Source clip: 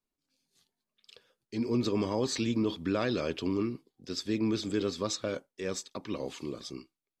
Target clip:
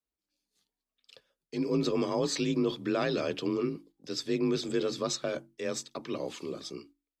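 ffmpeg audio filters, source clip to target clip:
-af "bandreject=f=50:t=h:w=6,bandreject=f=100:t=h:w=6,bandreject=f=150:t=h:w=6,bandreject=f=200:t=h:w=6,bandreject=f=250:t=h:w=6,bandreject=f=300:t=h:w=6,agate=range=-7dB:threshold=-55dB:ratio=16:detection=peak,afreqshift=34,volume=1dB"

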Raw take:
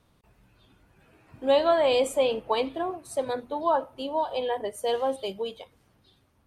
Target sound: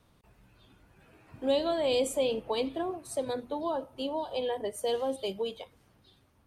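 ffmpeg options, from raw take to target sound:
-filter_complex "[0:a]acrossover=split=480|3000[a][b][c];[b]acompressor=threshold=-36dB:ratio=6[d];[a][d][c]amix=inputs=3:normalize=0"

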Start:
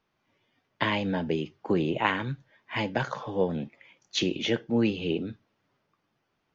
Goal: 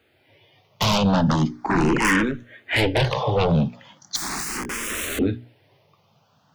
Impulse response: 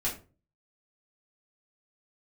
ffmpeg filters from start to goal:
-filter_complex "[0:a]highpass=f=77:w=0.5412,highpass=f=77:w=1.3066,bandreject=f=60:t=h:w=6,bandreject=f=120:t=h:w=6,bandreject=f=180:t=h:w=6,bandreject=f=240:t=h:w=6,bandreject=f=300:t=h:w=6,bandreject=f=360:t=h:w=6,bandreject=f=420:t=h:w=6,asplit=2[a][b];[b]aeval=exprs='0.376*sin(PI/2*8.91*val(0)/0.376)':c=same,volume=-7dB[c];[a][c]amix=inputs=2:normalize=0,lowshelf=f=130:g=6.5,asettb=1/sr,asplit=3[d][e][f];[d]atrim=end=4.164[g];[e]atrim=start=4.16:end=5.19,asetpts=PTS-STARTPTS,afade=t=in:d=0.004:c=qsin,afade=t=out:st=1.026:d=0.004:c=qsin,aeval=exprs='(mod(10.6*val(0)+1,2)-1)/10.6':c=same[h];[f]atrim=start=5.186[i];[g][h]acrossfade=d=0.004:c1=hsin:c2=qsin[j];[j][i]acrossfade=d=0.004:c1=qsin:c2=hsin,asplit=2[k][l];[l]afreqshift=0.38[m];[k][m]amix=inputs=2:normalize=1"

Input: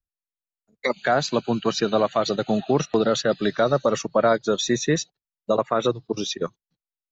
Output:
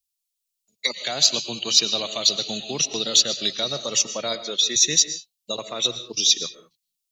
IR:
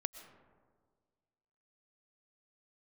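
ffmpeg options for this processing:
-filter_complex "[0:a]asettb=1/sr,asplit=3[a][b][c];[a]atrim=end=4.354[d];[b]atrim=start=4.35:end=4.76,asetpts=PTS-STARTPTS,afade=t=in:d=0.004:c=qsin,afade=t=out:st=0.406:d=0.004:c=qsin,highpass=250,lowpass=3.4k[e];[c]atrim=start=4.756[f];[d][e]acrossfade=d=0.004:c1=hsin:c2=qsin[g];[g][f]acrossfade=d=0.004:c1=qsin:c2=hsin[h];[1:a]atrim=start_sample=2205,afade=t=out:st=0.27:d=0.01,atrim=end_sample=12348[i];[h][i]afir=irnorm=-1:irlink=0,aexciter=amount=13.3:drive=5.5:freq=2.4k,volume=-10dB"

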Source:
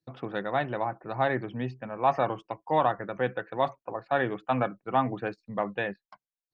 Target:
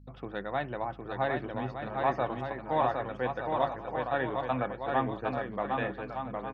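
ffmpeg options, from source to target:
-af "aecho=1:1:760|1216|1490|1654|1752:0.631|0.398|0.251|0.158|0.1,aeval=exprs='val(0)+0.00447*(sin(2*PI*50*n/s)+sin(2*PI*2*50*n/s)/2+sin(2*PI*3*50*n/s)/3+sin(2*PI*4*50*n/s)/4+sin(2*PI*5*50*n/s)/5)':c=same,volume=-4.5dB"

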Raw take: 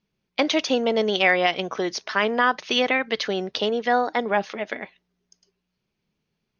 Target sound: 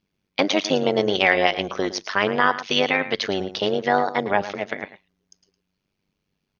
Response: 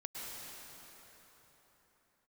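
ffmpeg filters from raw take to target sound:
-af "aecho=1:1:111:0.211,tremolo=f=97:d=0.824,volume=4.5dB"

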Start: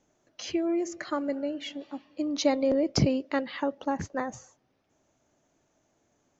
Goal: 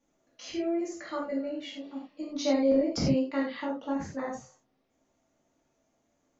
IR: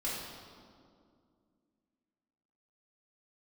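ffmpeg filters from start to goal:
-filter_complex "[1:a]atrim=start_sample=2205,afade=t=out:st=0.15:d=0.01,atrim=end_sample=7056,asetrate=42336,aresample=44100[a];[0:a][a]afir=irnorm=-1:irlink=0,volume=-6dB"

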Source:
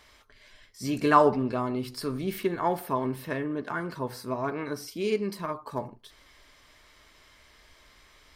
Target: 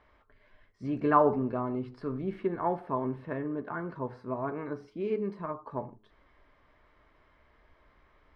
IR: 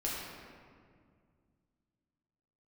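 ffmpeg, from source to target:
-af "lowpass=1.4k,bandreject=f=106:t=h:w=4,bandreject=f=212:t=h:w=4,bandreject=f=318:t=h:w=4,bandreject=f=424:t=h:w=4,volume=-2.5dB"

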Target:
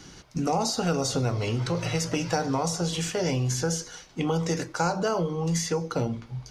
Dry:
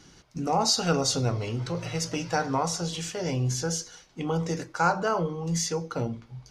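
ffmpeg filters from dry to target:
-filter_complex "[0:a]acrossover=split=760|2800|7700[a][b][c][d];[a]acompressor=threshold=-31dB:ratio=4[e];[b]acompressor=threshold=-42dB:ratio=4[f];[c]acompressor=threshold=-43dB:ratio=4[g];[d]acompressor=threshold=-44dB:ratio=4[h];[e][f][g][h]amix=inputs=4:normalize=0,volume=6.5dB"

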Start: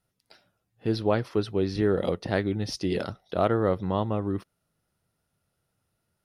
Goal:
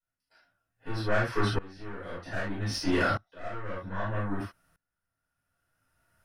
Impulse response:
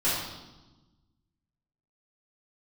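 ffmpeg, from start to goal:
-filter_complex "[0:a]asoftclip=type=tanh:threshold=-23dB,equalizer=f=160:t=o:w=0.67:g=-10,equalizer=f=400:t=o:w=0.67:g=-9,equalizer=f=1.6k:t=o:w=0.67:g=8,equalizer=f=4k:t=o:w=0.67:g=-6[a];[1:a]atrim=start_sample=2205,atrim=end_sample=3969[b];[a][b]afir=irnorm=-1:irlink=0,aeval=exprs='val(0)*pow(10,-24*if(lt(mod(-0.63*n/s,1),2*abs(-0.63)/1000),1-mod(-0.63*n/s,1)/(2*abs(-0.63)/1000),(mod(-0.63*n/s,1)-2*abs(-0.63)/1000)/(1-2*abs(-0.63)/1000))/20)':c=same"

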